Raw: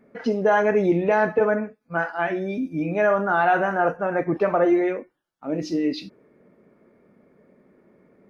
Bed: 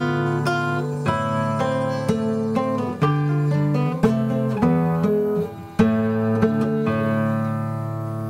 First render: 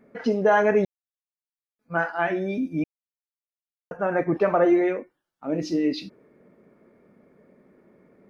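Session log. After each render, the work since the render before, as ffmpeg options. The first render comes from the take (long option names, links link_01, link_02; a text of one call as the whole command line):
ffmpeg -i in.wav -filter_complex "[0:a]asplit=5[link_01][link_02][link_03][link_04][link_05];[link_01]atrim=end=0.85,asetpts=PTS-STARTPTS,afade=type=out:start_time=0.846:duration=0.004:curve=hsin[link_06];[link_02]atrim=start=0.85:end=1.79,asetpts=PTS-STARTPTS,volume=0[link_07];[link_03]atrim=start=1.79:end=2.84,asetpts=PTS-STARTPTS,afade=type=in:duration=0.004:curve=hsin,afade=type=out:start_time=1.046:duration=0.004:curve=hsin[link_08];[link_04]atrim=start=2.84:end=3.91,asetpts=PTS-STARTPTS,volume=0[link_09];[link_05]atrim=start=3.91,asetpts=PTS-STARTPTS,afade=type=in:duration=0.004:curve=hsin[link_10];[link_06][link_07][link_08][link_09][link_10]concat=n=5:v=0:a=1" out.wav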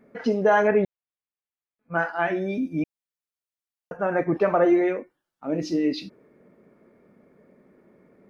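ffmpeg -i in.wav -filter_complex "[0:a]asettb=1/sr,asplit=3[link_01][link_02][link_03];[link_01]atrim=end=0.674[link_04];[link_02]atrim=start=0.67:end=1.94,asetpts=PTS-STARTPTS,afade=type=in:duration=0.004:curve=qsin,afade=type=out:start_time=1.266:duration=0.004:curve=qsin,lowpass=frequency=3200:width=0.5412,lowpass=frequency=3200:width=1.3066[link_05];[link_03]atrim=start=1.936[link_06];[link_04][link_05]acrossfade=duration=0.004:curve1=hsin:curve2=qsin[link_07];[link_07][link_06]acrossfade=duration=0.004:curve1=qsin:curve2=hsin" out.wav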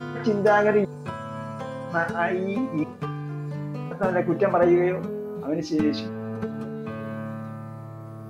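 ffmpeg -i in.wav -i bed.wav -filter_complex "[1:a]volume=-12dB[link_01];[0:a][link_01]amix=inputs=2:normalize=0" out.wav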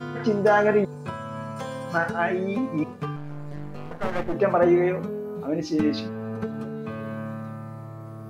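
ffmpeg -i in.wav -filter_complex "[0:a]asettb=1/sr,asplit=3[link_01][link_02][link_03];[link_01]atrim=end=1.564[link_04];[link_02]atrim=start=1.56:end=1.98,asetpts=PTS-STARTPTS,afade=type=in:duration=0.004:curve=qsin,afade=type=out:start_time=0.416:duration=0.004:curve=qsin,highshelf=frequency=3200:gain=10[link_05];[link_03]atrim=start=1.976[link_06];[link_04][link_05]acrossfade=duration=0.004:curve1=hsin:curve2=qsin[link_07];[link_07][link_06]acrossfade=duration=0.004:curve1=qsin:curve2=hsin,asettb=1/sr,asplit=3[link_08][link_09][link_10];[link_08]atrim=end=3.164[link_11];[link_09]atrim=start=3.16:end=4.34,asetpts=PTS-STARTPTS,afade=type=in:duration=0.004:curve=qsin,afade=type=out:start_time=1.176:duration=0.004:curve=qsin,aeval=exprs='max(val(0),0)':channel_layout=same[link_12];[link_10]atrim=start=4.336[link_13];[link_11][link_12]acrossfade=duration=0.004:curve1=hsin:curve2=qsin[link_14];[link_14][link_13]acrossfade=duration=0.004:curve1=qsin:curve2=hsin" out.wav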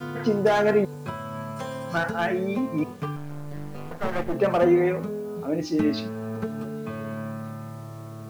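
ffmpeg -i in.wav -filter_complex "[0:a]acrossover=split=540|2600[link_01][link_02][link_03];[link_02]volume=22dB,asoftclip=hard,volume=-22dB[link_04];[link_01][link_04][link_03]amix=inputs=3:normalize=0,acrusher=bits=8:mix=0:aa=0.000001" out.wav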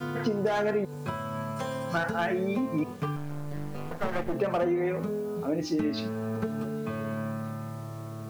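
ffmpeg -i in.wav -af "acompressor=threshold=-24dB:ratio=6" out.wav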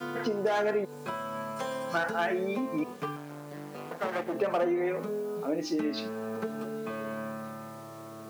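ffmpeg -i in.wav -af "highpass=270" out.wav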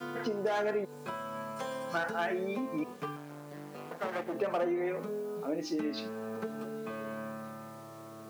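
ffmpeg -i in.wav -af "volume=-3.5dB" out.wav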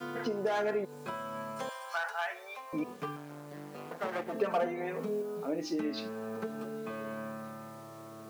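ffmpeg -i in.wav -filter_complex "[0:a]asettb=1/sr,asplit=3[link_01][link_02][link_03];[link_01]atrim=end=1.694[link_04];[link_02]atrim=start=1.69:end=2.73,asetpts=PTS-STARTPTS,afade=type=in:duration=0.004:curve=qsin,afade=type=out:start_time=1.036:duration=0.004:curve=qsin,highpass=frequency=730:width=0.5412,highpass=frequency=730:width=1.3066[link_05];[link_03]atrim=start=2.726[link_06];[link_04][link_05]acrossfade=duration=0.004:curve1=hsin:curve2=qsin[link_07];[link_07][link_06]acrossfade=duration=0.004:curve1=qsin:curve2=hsin,asettb=1/sr,asplit=3[link_08][link_09][link_10];[link_08]atrim=end=4.284[link_11];[link_09]atrim=start=4.28:end=5.22,asetpts=PTS-STARTPTS,afade=type=in:duration=0.004:curve=qsin,afade=type=out:start_time=0.936:duration=0.004:curve=qsin,aecho=1:1:4.4:0.65,atrim=end_sample=41454[link_12];[link_10]atrim=start=5.216[link_13];[link_11][link_12]acrossfade=duration=0.004:curve1=hsin:curve2=qsin[link_14];[link_14][link_13]acrossfade=duration=0.004:curve1=qsin:curve2=hsin" out.wav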